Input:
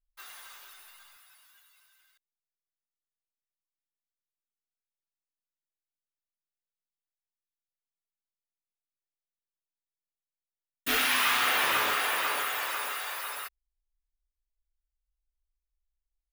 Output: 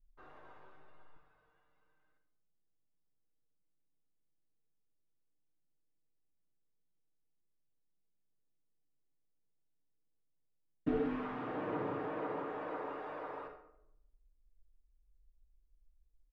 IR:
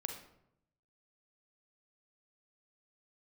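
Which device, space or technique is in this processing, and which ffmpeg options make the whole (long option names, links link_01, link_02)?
television next door: -filter_complex "[0:a]acompressor=threshold=-33dB:ratio=6,lowpass=360[link_01];[1:a]atrim=start_sample=2205[link_02];[link_01][link_02]afir=irnorm=-1:irlink=0,aecho=1:1:6.5:0.44,volume=14.5dB"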